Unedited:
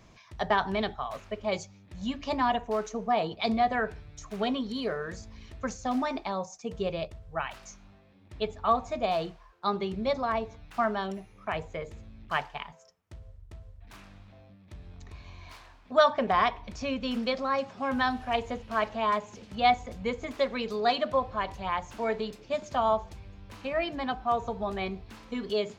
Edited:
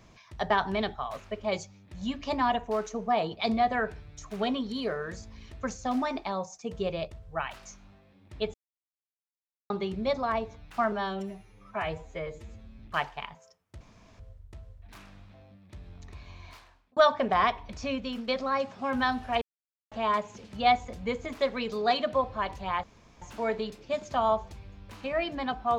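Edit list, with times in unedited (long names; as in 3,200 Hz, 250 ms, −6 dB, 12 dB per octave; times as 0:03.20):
0:08.54–0:09.70: silence
0:10.92–0:12.17: time-stretch 1.5×
0:13.18: splice in room tone 0.39 s
0:15.43–0:15.95: fade out
0:16.91–0:17.26: fade out, to −8.5 dB
0:18.40–0:18.90: silence
0:21.82: splice in room tone 0.38 s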